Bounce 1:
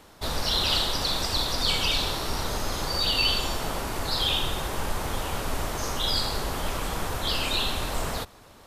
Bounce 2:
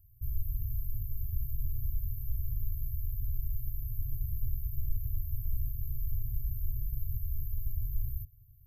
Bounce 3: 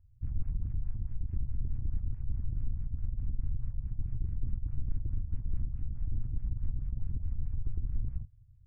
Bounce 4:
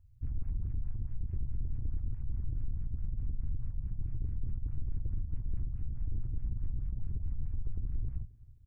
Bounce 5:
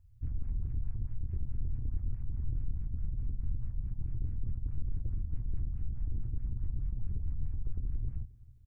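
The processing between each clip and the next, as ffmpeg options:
ffmpeg -i in.wav -af "afftfilt=real='re*(1-between(b*sr/4096,130,12000))':imag='im*(1-between(b*sr/4096,130,12000))':win_size=4096:overlap=0.75" out.wav
ffmpeg -i in.wav -af "aeval=exprs='0.106*(cos(1*acos(clip(val(0)/0.106,-1,1)))-cos(1*PI/2))+0.00841*(cos(8*acos(clip(val(0)/0.106,-1,1)))-cos(8*PI/2))':channel_layout=same,afftfilt=real='re*lt(b*sr/1024,670*pow(3200/670,0.5+0.5*sin(2*PI*4.7*pts/sr)))':imag='im*lt(b*sr/1024,670*pow(3200/670,0.5+0.5*sin(2*PI*4.7*pts/sr)))':win_size=1024:overlap=0.75" out.wav
ffmpeg -i in.wav -af "asoftclip=type=tanh:threshold=-26.5dB,aecho=1:1:266|532|798:0.0794|0.035|0.0154,volume=1dB" out.wav
ffmpeg -i in.wav -filter_complex "[0:a]asplit=2[link_01][link_02];[link_02]adelay=26,volume=-10dB[link_03];[link_01][link_03]amix=inputs=2:normalize=0" out.wav

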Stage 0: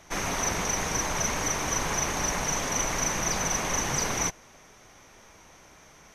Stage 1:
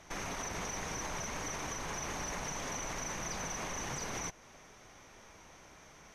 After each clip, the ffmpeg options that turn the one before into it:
ffmpeg -i in.wav -filter_complex "[0:a]highshelf=frequency=9900:gain=-7.5,asplit=2[link_01][link_02];[link_02]acompressor=threshold=-36dB:ratio=6,volume=-0.5dB[link_03];[link_01][link_03]amix=inputs=2:normalize=0,alimiter=limit=-21.5dB:level=0:latency=1:release=53,volume=-8.5dB" out.wav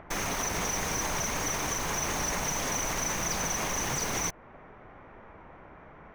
ffmpeg -i in.wav -filter_complex "[0:a]highshelf=frequency=10000:gain=9.5,acrossover=split=2000[link_01][link_02];[link_01]acompressor=mode=upward:threshold=-54dB:ratio=2.5[link_03];[link_02]acrusher=bits=7:mix=0:aa=0.000001[link_04];[link_03][link_04]amix=inputs=2:normalize=0,volume=7.5dB" out.wav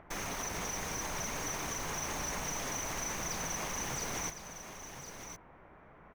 ffmpeg -i in.wav -af "aecho=1:1:1058:0.335,volume=-7dB" out.wav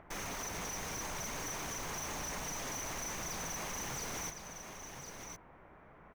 ffmpeg -i in.wav -af "asoftclip=type=hard:threshold=-36dB,volume=-1dB" out.wav

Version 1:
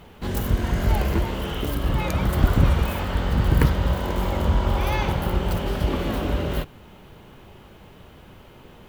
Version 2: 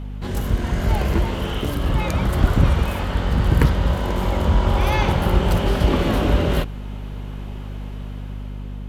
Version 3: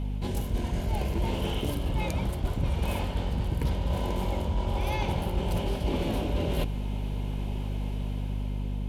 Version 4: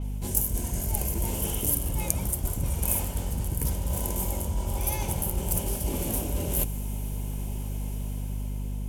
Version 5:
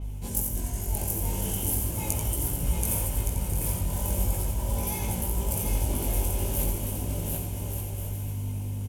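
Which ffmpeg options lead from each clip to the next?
ffmpeg -i in.wav -af "lowpass=12000,dynaudnorm=framelen=340:gausssize=7:maxgain=6.5dB,aeval=exprs='val(0)+0.0355*(sin(2*PI*50*n/s)+sin(2*PI*2*50*n/s)/2+sin(2*PI*3*50*n/s)/3+sin(2*PI*4*50*n/s)/4+sin(2*PI*5*50*n/s)/5)':channel_layout=same" out.wav
ffmpeg -i in.wav -af "superequalizer=10b=0.355:11b=0.447:16b=1.41,areverse,acompressor=threshold=-25dB:ratio=6,areverse" out.wav
ffmpeg -i in.wav -af "lowshelf=frequency=170:gain=4,aexciter=amount=8.8:drive=2.3:freq=5700,adynamicequalizer=threshold=0.00501:dfrequency=6900:dqfactor=0.7:tfrequency=6900:tqfactor=0.7:attack=5:release=100:ratio=0.375:range=3.5:mode=boostabove:tftype=highshelf,volume=-4dB" out.wav
ffmpeg -i in.wav -filter_complex "[0:a]asplit=2[link_01][link_02];[link_02]aecho=0:1:730|1168|1431|1588|1683:0.631|0.398|0.251|0.158|0.1[link_03];[link_01][link_03]amix=inputs=2:normalize=0,flanger=delay=17.5:depth=3.4:speed=0.39,asplit=2[link_04][link_05];[link_05]aecho=0:1:88:0.447[link_06];[link_04][link_06]amix=inputs=2:normalize=0" out.wav

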